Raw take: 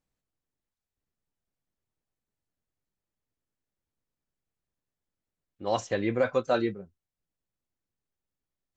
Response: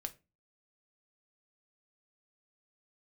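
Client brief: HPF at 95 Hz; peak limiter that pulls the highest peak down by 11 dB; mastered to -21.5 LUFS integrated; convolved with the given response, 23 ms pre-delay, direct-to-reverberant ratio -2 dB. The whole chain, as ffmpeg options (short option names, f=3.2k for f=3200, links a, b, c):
-filter_complex "[0:a]highpass=95,alimiter=limit=-23dB:level=0:latency=1,asplit=2[a][b];[1:a]atrim=start_sample=2205,adelay=23[c];[b][c]afir=irnorm=-1:irlink=0,volume=4dB[d];[a][d]amix=inputs=2:normalize=0,volume=9.5dB"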